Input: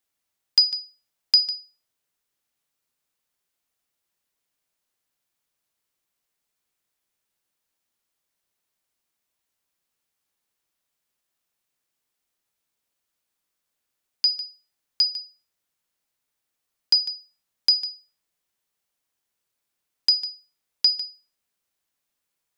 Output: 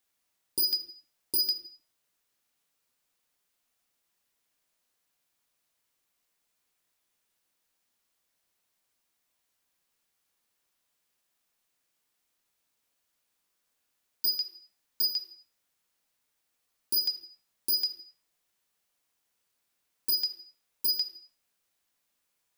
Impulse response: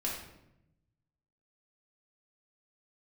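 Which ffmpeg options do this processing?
-filter_complex "[0:a]aeval=exprs='0.075*(abs(mod(val(0)/0.075+3,4)-2)-1)':channel_layout=same,asplit=2[link_01][link_02];[1:a]atrim=start_sample=2205,afade=type=out:start_time=0.37:duration=0.01,atrim=end_sample=16758,lowshelf=frequency=220:gain=-8.5[link_03];[link_02][link_03]afir=irnorm=-1:irlink=0,volume=-6.5dB[link_04];[link_01][link_04]amix=inputs=2:normalize=0,volume=-1dB"

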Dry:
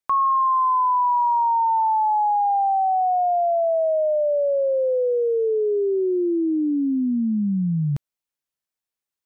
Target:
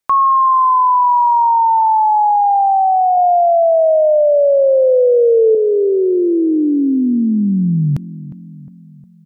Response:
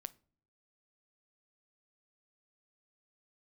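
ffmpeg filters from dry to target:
-filter_complex "[0:a]asettb=1/sr,asplit=3[link_01][link_02][link_03];[link_01]atrim=end=3.174[link_04];[link_02]atrim=start=3.17:end=5.55,asetpts=PTS-STARTPTS,afade=type=in:duration=0.004:curve=qsin,afade=type=out:start_time=2.376:duration=0.004:curve=qsin,equalizer=frequency=230:width=1.5:gain=15[link_05];[link_03]atrim=start=5.546[link_06];[link_04][link_05]acrossfade=duration=0.004:curve1=hsin:curve2=qsin[link_07];[link_07][link_06]acrossfade=duration=0.004:curve1=qsin:curve2=hsin,asplit=2[link_08][link_09];[link_09]adelay=358,lowpass=frequency=1100:poles=1,volume=-16dB,asplit=2[link_10][link_11];[link_11]adelay=358,lowpass=frequency=1100:poles=1,volume=0.55,asplit=2[link_12][link_13];[link_13]adelay=358,lowpass=frequency=1100:poles=1,volume=0.55,asplit=2[link_14][link_15];[link_15]adelay=358,lowpass=frequency=1100:poles=1,volume=0.55,asplit=2[link_16][link_17];[link_17]adelay=358,lowpass=frequency=1100:poles=1,volume=0.55[link_18];[link_08][link_10][link_12][link_14][link_16][link_18]amix=inputs=6:normalize=0,volume=7.5dB"

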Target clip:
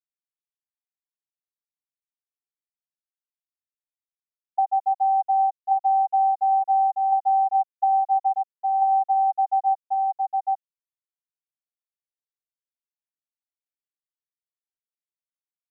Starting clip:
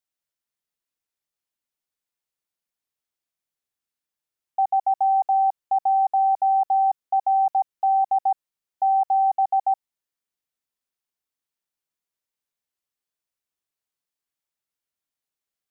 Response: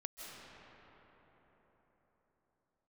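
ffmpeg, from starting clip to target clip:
-filter_complex "[0:a]asplit=2[link_01][link_02];[link_02]adelay=809,lowpass=frequency=880:poles=1,volume=-6dB,asplit=2[link_03][link_04];[link_04]adelay=809,lowpass=frequency=880:poles=1,volume=0.49,asplit=2[link_05][link_06];[link_06]adelay=809,lowpass=frequency=880:poles=1,volume=0.49,asplit=2[link_07][link_08];[link_08]adelay=809,lowpass=frequency=880:poles=1,volume=0.49,asplit=2[link_09][link_10];[link_10]adelay=809,lowpass=frequency=880:poles=1,volume=0.49,asplit=2[link_11][link_12];[link_12]adelay=809,lowpass=frequency=880:poles=1,volume=0.49[link_13];[link_01][link_03][link_05][link_07][link_09][link_11][link_13]amix=inputs=7:normalize=0,acompressor=threshold=-25dB:ratio=4,aemphasis=mode=reproduction:type=cd,afftfilt=real='re*gte(hypot(re,im),0.501)':imag='im*gte(hypot(re,im),0.501)':win_size=1024:overlap=0.75,highpass=600,volume=8.5dB"

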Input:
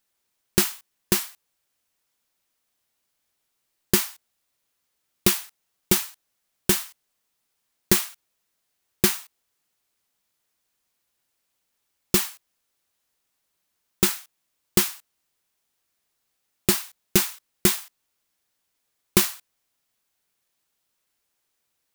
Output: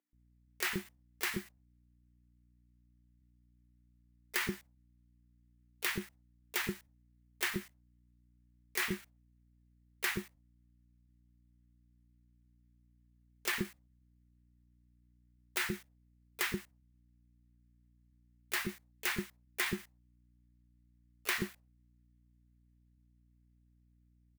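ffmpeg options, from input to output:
ffmpeg -i in.wav -filter_complex "[0:a]agate=range=-15dB:threshold=-43dB:ratio=16:detection=peak,equalizer=frequency=1900:width=1.8:gain=10.5,acrossover=split=3700[link_01][link_02];[link_01]alimiter=limit=-11dB:level=0:latency=1:release=38[link_03];[link_02]acompressor=threshold=-28dB:ratio=16[link_04];[link_03][link_04]amix=inputs=2:normalize=0,asplit=2[link_05][link_06];[link_06]asetrate=52444,aresample=44100,atempo=0.840896,volume=-13dB[link_07];[link_05][link_07]amix=inputs=2:normalize=0,aeval=exprs='val(0)+0.00126*(sin(2*PI*60*n/s)+sin(2*PI*2*60*n/s)/2+sin(2*PI*3*60*n/s)/3+sin(2*PI*4*60*n/s)/4+sin(2*PI*5*60*n/s)/5)':channel_layout=same,atempo=0.9,acrossover=split=430[link_08][link_09];[link_08]adelay=130[link_10];[link_10][link_09]amix=inputs=2:normalize=0,volume=-8.5dB" out.wav

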